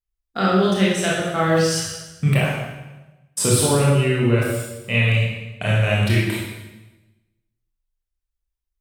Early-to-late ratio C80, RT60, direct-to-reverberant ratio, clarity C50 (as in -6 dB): 3.0 dB, 1.1 s, -5.5 dB, 0.0 dB